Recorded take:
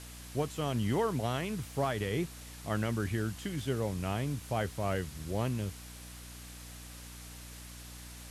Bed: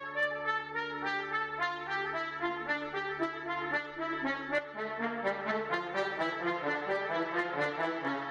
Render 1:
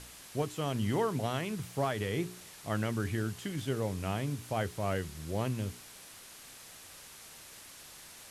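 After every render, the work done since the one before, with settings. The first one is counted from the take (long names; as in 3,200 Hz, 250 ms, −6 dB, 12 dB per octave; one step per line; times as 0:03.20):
hum removal 60 Hz, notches 7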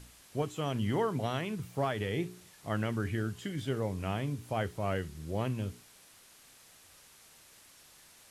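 noise reduction from a noise print 7 dB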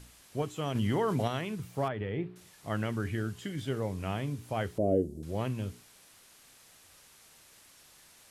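0:00.75–0:01.28: envelope flattener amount 70%
0:01.88–0:02.36: high-frequency loss of the air 450 metres
0:04.78–0:05.23: drawn EQ curve 160 Hz 0 dB, 270 Hz +14 dB, 640 Hz +7 dB, 1,100 Hz −27 dB, 2,100 Hz −28 dB, 5,100 Hz −15 dB, 8,000 Hz −8 dB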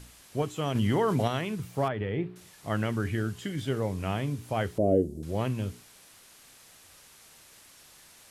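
level +3.5 dB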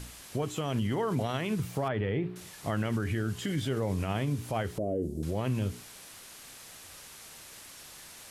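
in parallel at −0.5 dB: downward compressor, threshold −34 dBFS, peak gain reduction 15 dB
on the sum: brickwall limiter −22 dBFS, peak gain reduction 12 dB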